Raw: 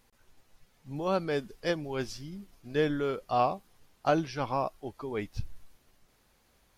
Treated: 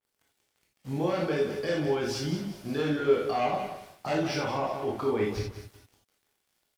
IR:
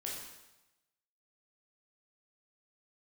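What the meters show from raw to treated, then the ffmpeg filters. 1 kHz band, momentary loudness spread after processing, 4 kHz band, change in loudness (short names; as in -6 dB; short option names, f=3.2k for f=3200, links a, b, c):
-0.5 dB, 11 LU, +4.5 dB, +2.5 dB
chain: -filter_complex "[0:a]aeval=exprs='0.237*sin(PI/2*2.51*val(0)/0.237)':c=same,acompressor=threshold=-25dB:ratio=4,highpass=79,aecho=1:1:182|364|546|728:0.251|0.0904|0.0326|0.0117,aeval=exprs='sgn(val(0))*max(abs(val(0))-0.00355,0)':c=same,alimiter=level_in=0.5dB:limit=-24dB:level=0:latency=1:release=10,volume=-0.5dB[a];[1:a]atrim=start_sample=2205,atrim=end_sample=4410[b];[a][b]afir=irnorm=-1:irlink=0,adynamicequalizer=threshold=0.00224:dfrequency=4000:dqfactor=0.7:tfrequency=4000:tqfactor=0.7:attack=5:release=100:ratio=0.375:range=2.5:mode=cutabove:tftype=highshelf,volume=4.5dB"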